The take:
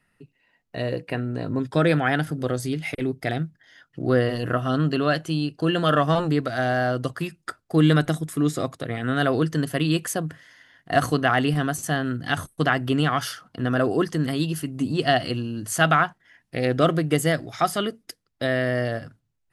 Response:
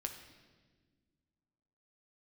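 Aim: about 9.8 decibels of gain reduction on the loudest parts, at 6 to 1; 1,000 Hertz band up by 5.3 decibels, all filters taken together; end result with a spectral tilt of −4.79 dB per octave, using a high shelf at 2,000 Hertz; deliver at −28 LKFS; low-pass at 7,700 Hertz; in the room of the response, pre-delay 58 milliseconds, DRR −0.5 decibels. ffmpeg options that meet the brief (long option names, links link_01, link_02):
-filter_complex "[0:a]lowpass=7700,equalizer=frequency=1000:width_type=o:gain=5.5,highshelf=frequency=2000:gain=8,acompressor=threshold=-20dB:ratio=6,asplit=2[link_01][link_02];[1:a]atrim=start_sample=2205,adelay=58[link_03];[link_02][link_03]afir=irnorm=-1:irlink=0,volume=1.5dB[link_04];[link_01][link_04]amix=inputs=2:normalize=0,volume=-5.5dB"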